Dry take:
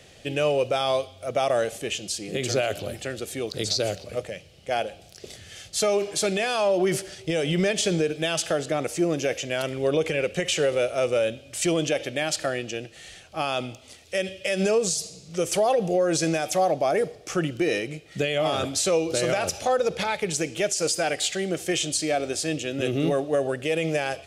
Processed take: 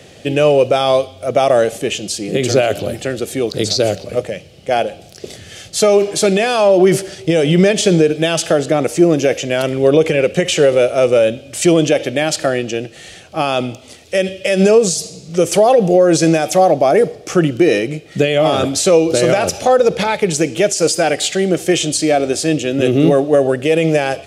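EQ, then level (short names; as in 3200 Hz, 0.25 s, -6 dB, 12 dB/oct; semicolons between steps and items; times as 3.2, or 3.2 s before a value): HPF 240 Hz 6 dB/oct; low shelf 480 Hz +11 dB; +7.5 dB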